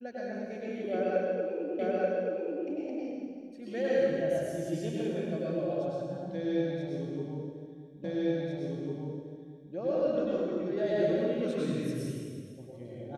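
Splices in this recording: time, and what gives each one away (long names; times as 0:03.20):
0:01.79: the same again, the last 0.88 s
0:08.04: the same again, the last 1.7 s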